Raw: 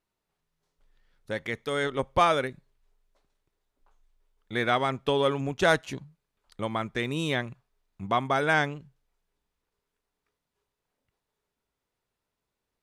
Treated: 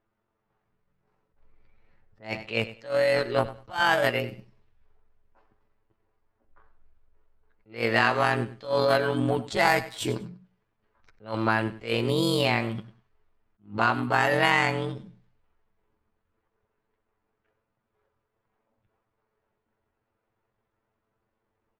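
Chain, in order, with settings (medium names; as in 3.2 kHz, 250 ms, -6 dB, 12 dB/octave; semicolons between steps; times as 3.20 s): level-controlled noise filter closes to 1.3 kHz, open at -24 dBFS; granular stretch 1.7×, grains 44 ms; compression 3:1, threshold -29 dBFS, peak gain reduction 9.5 dB; formant shift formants +4 st; on a send: feedback delay 98 ms, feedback 21%, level -16 dB; on the sum: attacks held to a fixed rise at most 200 dB/s; trim +9 dB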